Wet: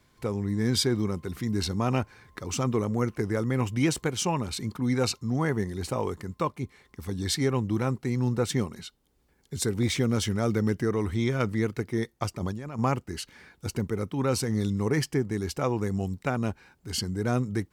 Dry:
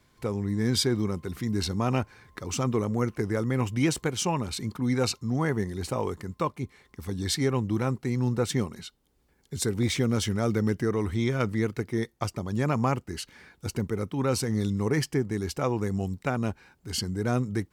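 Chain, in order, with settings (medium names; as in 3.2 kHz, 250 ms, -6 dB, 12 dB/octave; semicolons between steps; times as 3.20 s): 12.37–12.79 s: compressor with a negative ratio -34 dBFS, ratio -1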